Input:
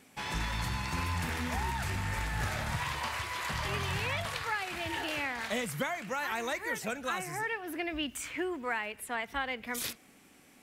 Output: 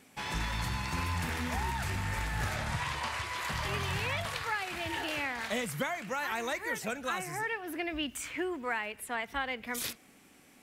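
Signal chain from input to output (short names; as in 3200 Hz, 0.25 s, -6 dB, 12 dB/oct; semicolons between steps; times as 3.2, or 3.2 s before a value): 2.56–3.38 LPF 11000 Hz 12 dB/oct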